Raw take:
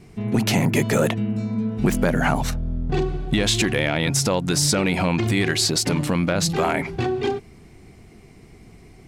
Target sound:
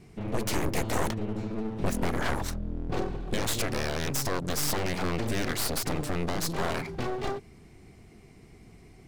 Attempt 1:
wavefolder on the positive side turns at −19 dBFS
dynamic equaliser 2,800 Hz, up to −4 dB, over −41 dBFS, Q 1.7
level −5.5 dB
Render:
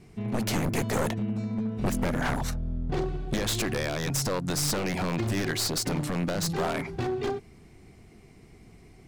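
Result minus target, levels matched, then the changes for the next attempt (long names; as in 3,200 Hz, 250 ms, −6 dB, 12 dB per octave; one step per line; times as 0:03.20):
wavefolder on the positive side: distortion −11 dB
change: wavefolder on the positive side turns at −27.5 dBFS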